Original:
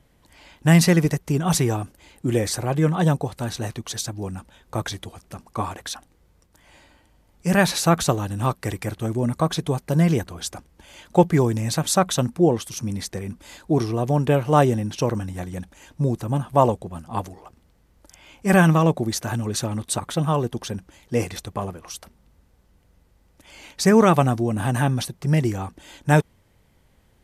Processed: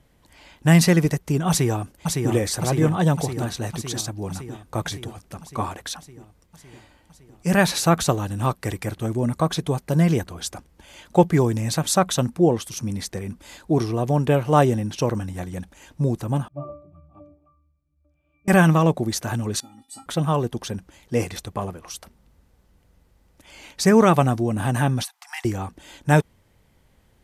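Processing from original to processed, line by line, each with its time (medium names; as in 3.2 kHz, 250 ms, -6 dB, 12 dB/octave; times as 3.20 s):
1.49–2.32 s: echo throw 560 ms, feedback 70%, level -4 dB
16.48–18.48 s: pitch-class resonator D, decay 0.41 s
19.60–20.06 s: feedback comb 270 Hz, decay 0.21 s, harmonics odd, mix 100%
25.03–25.45 s: brick-wall FIR high-pass 700 Hz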